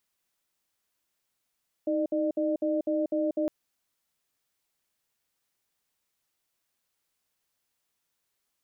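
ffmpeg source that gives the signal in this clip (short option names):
-f lavfi -i "aevalsrc='0.0447*(sin(2*PI*314*t)+sin(2*PI*603*t))*clip(min(mod(t,0.25),0.19-mod(t,0.25))/0.005,0,1)':d=1.61:s=44100"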